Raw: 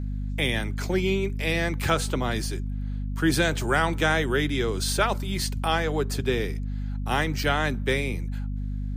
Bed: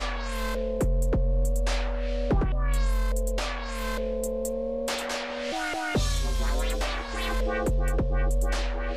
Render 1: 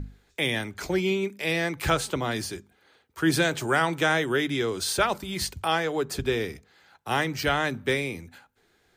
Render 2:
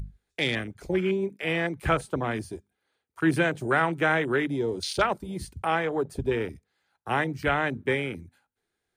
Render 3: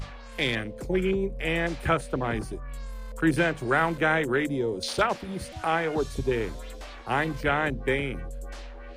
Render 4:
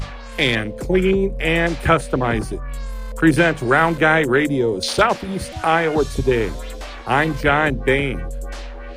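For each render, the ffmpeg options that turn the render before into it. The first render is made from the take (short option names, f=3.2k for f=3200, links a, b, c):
-af "bandreject=f=50:t=h:w=6,bandreject=f=100:t=h:w=6,bandreject=f=150:t=h:w=6,bandreject=f=200:t=h:w=6,bandreject=f=250:t=h:w=6"
-af "afwtdn=0.0316,equalizer=f=9.4k:w=4.1:g=9.5"
-filter_complex "[1:a]volume=-12.5dB[a];[0:a][a]amix=inputs=2:normalize=0"
-af "volume=9dB,alimiter=limit=-3dB:level=0:latency=1"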